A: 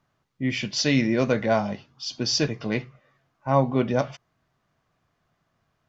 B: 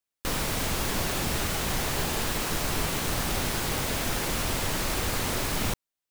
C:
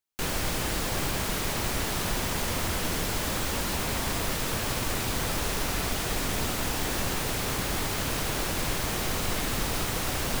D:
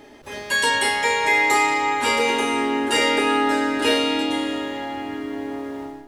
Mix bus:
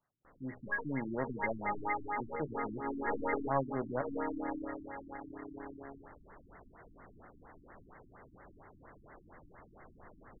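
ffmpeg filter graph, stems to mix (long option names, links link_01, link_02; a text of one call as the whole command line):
ffmpeg -i stem1.wav -i stem2.wav -i stem3.wav -i stem4.wav -filter_complex "[0:a]lowpass=frequency=5000:width=0.5412,lowpass=frequency=5000:width=1.3066,volume=-5.5dB,asplit=2[link_01][link_02];[1:a]asoftclip=type=tanh:threshold=-27dB,volume=-20dB[link_03];[2:a]adelay=750,volume=-15.5dB[link_04];[3:a]aeval=exprs='sgn(val(0))*max(abs(val(0))-0.0211,0)':channel_layout=same,adelay=150,volume=-3dB[link_05];[link_02]apad=whole_len=274681[link_06];[link_05][link_06]sidechaincompress=threshold=-36dB:ratio=8:attack=11:release=119[link_07];[link_01][link_03][link_04][link_07]amix=inputs=4:normalize=0,lowshelf=frequency=410:gain=-10,aeval=exprs='(tanh(6.31*val(0)+0.65)-tanh(0.65))/6.31':channel_layout=same,afftfilt=real='re*lt(b*sr/1024,330*pow(2200/330,0.5+0.5*sin(2*PI*4.3*pts/sr)))':imag='im*lt(b*sr/1024,330*pow(2200/330,0.5+0.5*sin(2*PI*4.3*pts/sr)))':win_size=1024:overlap=0.75" out.wav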